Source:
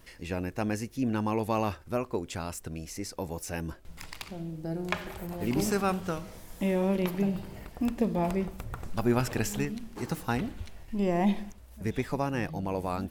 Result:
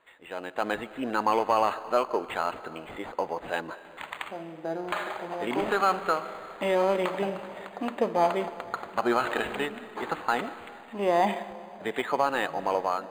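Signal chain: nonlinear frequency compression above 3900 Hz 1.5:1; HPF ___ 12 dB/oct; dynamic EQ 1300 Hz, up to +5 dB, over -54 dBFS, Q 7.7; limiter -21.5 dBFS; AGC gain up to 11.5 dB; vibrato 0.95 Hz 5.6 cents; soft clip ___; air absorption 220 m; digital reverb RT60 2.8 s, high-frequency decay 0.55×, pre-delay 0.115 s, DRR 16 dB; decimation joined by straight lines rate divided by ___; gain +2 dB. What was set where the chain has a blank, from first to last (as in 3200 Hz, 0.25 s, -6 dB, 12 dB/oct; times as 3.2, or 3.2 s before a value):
680 Hz, -11 dBFS, 8×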